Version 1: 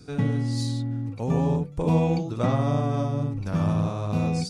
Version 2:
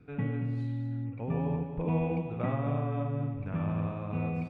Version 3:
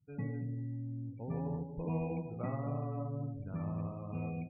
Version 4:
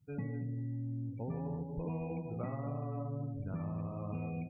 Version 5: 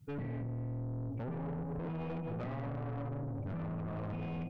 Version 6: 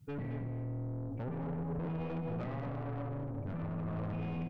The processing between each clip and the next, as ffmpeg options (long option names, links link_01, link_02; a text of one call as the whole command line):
ffmpeg -i in.wav -filter_complex "[0:a]firequalizer=gain_entry='entry(1100,0);entry(2500,4);entry(4700,-28)':delay=0.05:min_phase=1,asplit=2[link_01][link_02];[link_02]aecho=0:1:230:0.376[link_03];[link_01][link_03]amix=inputs=2:normalize=0,volume=-8dB" out.wav
ffmpeg -i in.wav -af "afftdn=noise_reduction=33:noise_floor=-42,volume=-6.5dB" out.wav
ffmpeg -i in.wav -af "acompressor=threshold=-41dB:ratio=6,volume=5.5dB" out.wav
ffmpeg -i in.wav -af "acompressor=threshold=-39dB:ratio=6,aeval=exprs='(tanh(200*val(0)+0.2)-tanh(0.2))/200':channel_layout=same,volume=10dB" out.wav
ffmpeg -i in.wav -af "aecho=1:1:218:0.355" out.wav